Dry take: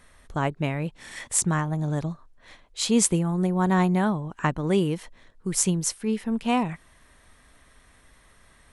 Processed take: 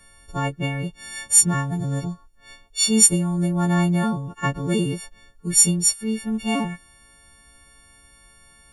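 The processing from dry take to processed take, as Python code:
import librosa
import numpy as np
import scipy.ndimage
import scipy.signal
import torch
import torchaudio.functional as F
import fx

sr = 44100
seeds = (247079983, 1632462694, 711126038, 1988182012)

y = fx.freq_snap(x, sr, grid_st=4)
y = fx.low_shelf(y, sr, hz=250.0, db=9.0)
y = F.gain(torch.from_numpy(y), -3.5).numpy()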